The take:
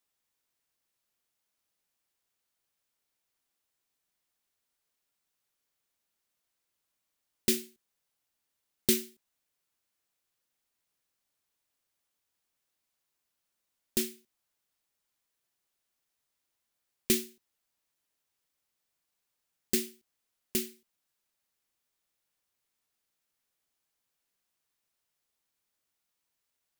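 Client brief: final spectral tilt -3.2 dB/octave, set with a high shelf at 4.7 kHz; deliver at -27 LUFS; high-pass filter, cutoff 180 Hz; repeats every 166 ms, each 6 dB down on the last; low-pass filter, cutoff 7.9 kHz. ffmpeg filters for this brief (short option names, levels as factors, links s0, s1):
-af "highpass=180,lowpass=7900,highshelf=f=4700:g=-9,aecho=1:1:166|332|498|664|830|996:0.501|0.251|0.125|0.0626|0.0313|0.0157,volume=3.55"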